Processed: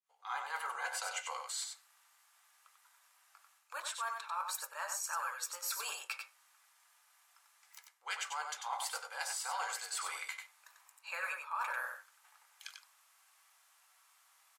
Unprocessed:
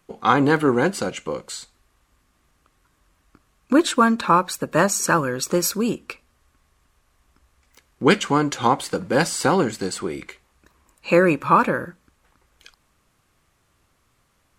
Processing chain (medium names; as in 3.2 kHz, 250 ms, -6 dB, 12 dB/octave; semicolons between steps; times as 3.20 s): fade-in on the opening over 0.54 s; steep high-pass 750 Hz 36 dB/octave; treble shelf 5.7 kHz +8.5 dB; reverse; compression 8:1, threshold -34 dBFS, peak gain reduction 22.5 dB; reverse; delay 94 ms -5.5 dB; on a send at -5 dB: reverberation RT60 0.35 s, pre-delay 3 ms; on the sum: trim -4 dB